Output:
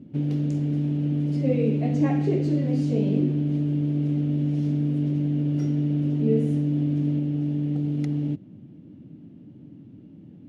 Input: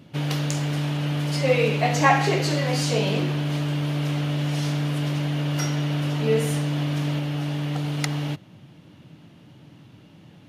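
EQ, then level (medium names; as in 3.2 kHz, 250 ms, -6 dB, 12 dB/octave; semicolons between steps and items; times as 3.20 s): FFT filter 150 Hz 0 dB, 250 Hz +9 dB, 1 kHz -17 dB, 2.3 kHz -16 dB, 4.3 kHz -21 dB; dynamic bell 1.2 kHz, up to -5 dB, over -40 dBFS, Q 0.72; low-pass 9.5 kHz 12 dB/octave; 0.0 dB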